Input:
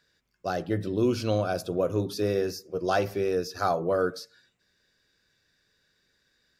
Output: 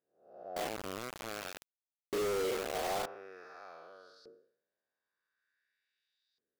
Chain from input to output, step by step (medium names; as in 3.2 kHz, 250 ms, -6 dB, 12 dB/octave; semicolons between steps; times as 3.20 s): spectral blur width 341 ms; dynamic bell 650 Hz, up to +3 dB, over -39 dBFS, Q 0.93; LFO band-pass saw up 0.47 Hz 360–4300 Hz; 0.56–3.06 s: companded quantiser 2-bit; trim -6 dB